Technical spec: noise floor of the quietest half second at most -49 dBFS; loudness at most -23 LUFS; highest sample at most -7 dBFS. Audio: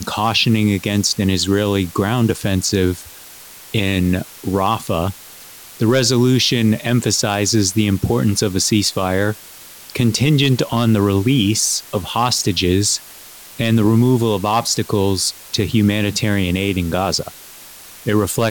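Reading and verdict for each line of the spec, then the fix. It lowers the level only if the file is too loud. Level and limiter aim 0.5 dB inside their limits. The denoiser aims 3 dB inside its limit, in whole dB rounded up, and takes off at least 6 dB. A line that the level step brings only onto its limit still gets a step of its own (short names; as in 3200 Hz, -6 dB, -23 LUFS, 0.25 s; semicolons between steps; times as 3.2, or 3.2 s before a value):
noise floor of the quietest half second -39 dBFS: fail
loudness -17.0 LUFS: fail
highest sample -5.0 dBFS: fail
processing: denoiser 7 dB, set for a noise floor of -39 dBFS; gain -6.5 dB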